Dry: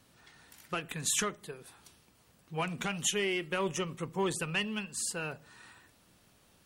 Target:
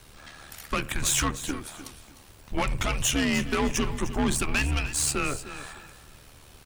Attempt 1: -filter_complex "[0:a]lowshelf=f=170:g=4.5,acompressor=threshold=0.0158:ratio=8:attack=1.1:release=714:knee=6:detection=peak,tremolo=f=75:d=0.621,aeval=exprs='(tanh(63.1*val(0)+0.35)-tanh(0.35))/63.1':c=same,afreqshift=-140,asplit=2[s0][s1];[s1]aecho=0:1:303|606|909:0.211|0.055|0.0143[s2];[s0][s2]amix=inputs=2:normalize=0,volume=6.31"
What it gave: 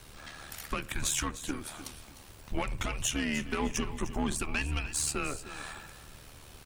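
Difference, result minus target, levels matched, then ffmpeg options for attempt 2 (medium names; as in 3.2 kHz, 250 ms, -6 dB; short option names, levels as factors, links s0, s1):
compression: peak gain reduction +10 dB
-filter_complex "[0:a]lowshelf=f=170:g=4.5,acompressor=threshold=0.0631:ratio=8:attack=1.1:release=714:knee=6:detection=peak,tremolo=f=75:d=0.621,aeval=exprs='(tanh(63.1*val(0)+0.35)-tanh(0.35))/63.1':c=same,afreqshift=-140,asplit=2[s0][s1];[s1]aecho=0:1:303|606|909:0.211|0.055|0.0143[s2];[s0][s2]amix=inputs=2:normalize=0,volume=6.31"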